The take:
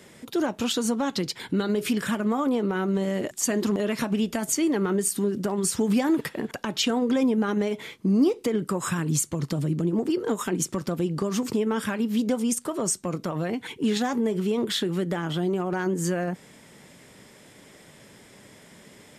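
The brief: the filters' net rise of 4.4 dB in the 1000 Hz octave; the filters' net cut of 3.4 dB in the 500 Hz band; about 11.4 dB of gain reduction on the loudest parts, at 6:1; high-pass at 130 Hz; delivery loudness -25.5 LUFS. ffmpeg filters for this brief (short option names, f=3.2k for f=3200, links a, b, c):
-af "highpass=130,equalizer=f=500:t=o:g=-6,equalizer=f=1k:t=o:g=7.5,acompressor=threshold=-32dB:ratio=6,volume=10dB"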